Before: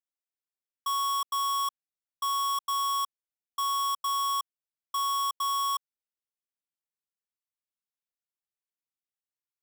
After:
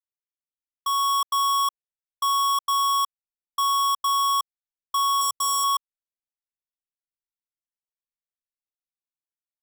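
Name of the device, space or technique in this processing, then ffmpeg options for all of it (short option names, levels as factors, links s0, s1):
voice memo with heavy noise removal: -filter_complex "[0:a]asettb=1/sr,asplit=3[s0][s1][s2];[s0]atrim=end=5.214[s3];[s1]atrim=start=5.21:end=5.64,asetpts=PTS-STARTPTS,afade=t=in:d=0.004:c=qsin,afade=t=out:st=0.426:d=0.004:c=qsin,equalizer=f=125:t=o:w=1:g=9,equalizer=f=500:t=o:w=1:g=7,equalizer=f=1000:t=o:w=1:g=-3,equalizer=f=2000:t=o:w=1:g=-6,equalizer=f=4000:t=o:w=1:g=-3,equalizer=f=8000:t=o:w=1:g=9[s4];[s2]atrim=start=5.636[s5];[s3][s4]acrossfade=d=0.004:c1=hsin:c2=qsin[s6];[s6][s5]acrossfade=d=0.004:c1=qsin:c2=hsin,anlmdn=1,dynaudnorm=f=110:g=13:m=3.76,volume=0.562"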